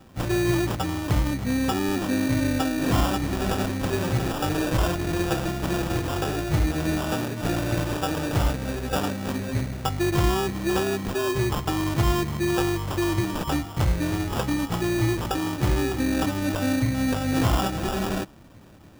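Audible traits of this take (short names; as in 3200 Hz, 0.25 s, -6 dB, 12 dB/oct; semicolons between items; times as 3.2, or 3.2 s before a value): aliases and images of a low sample rate 2100 Hz, jitter 0%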